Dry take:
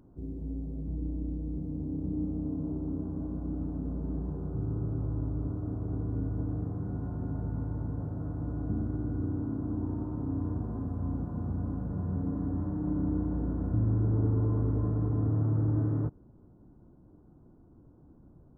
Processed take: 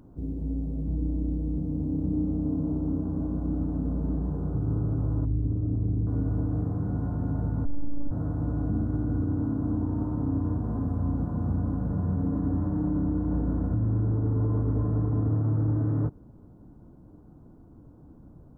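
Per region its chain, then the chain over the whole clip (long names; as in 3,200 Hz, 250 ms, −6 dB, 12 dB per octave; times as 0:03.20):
0:05.25–0:06.07: spectral envelope exaggerated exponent 1.5 + flutter between parallel walls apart 6.3 metres, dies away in 0.22 s
0:07.65–0:08.11: phases set to zero 286 Hz + spectral tilt −4 dB per octave
whole clip: notch filter 370 Hz, Q 12; brickwall limiter −25 dBFS; level +6 dB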